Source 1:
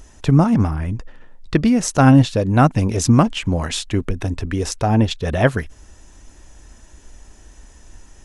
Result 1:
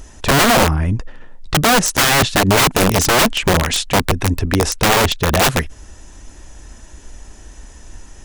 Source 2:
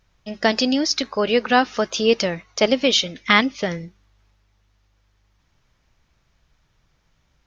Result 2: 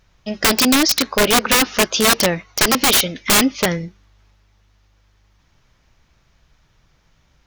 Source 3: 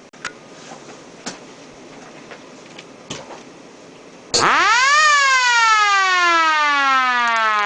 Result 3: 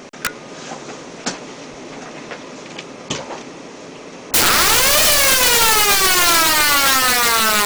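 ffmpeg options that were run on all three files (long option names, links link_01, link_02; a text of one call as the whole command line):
ffmpeg -i in.wav -af "aeval=exprs='(mod(4.73*val(0)+1,2)-1)/4.73':channel_layout=same,volume=6dB" out.wav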